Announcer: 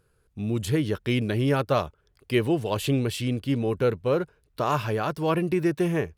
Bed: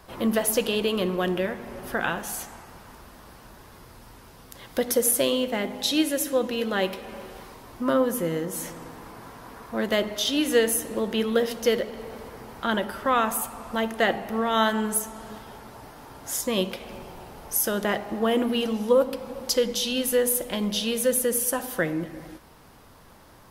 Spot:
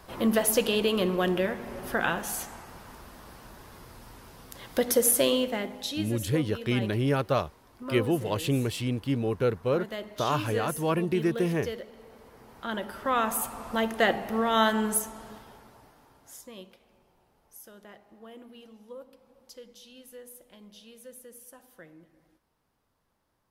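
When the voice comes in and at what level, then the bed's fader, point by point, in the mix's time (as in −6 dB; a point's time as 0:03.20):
5.60 s, −2.5 dB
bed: 0:05.36 −0.5 dB
0:06.16 −13 dB
0:12.17 −13 dB
0:13.46 −1 dB
0:14.93 −1 dB
0:16.92 −24.5 dB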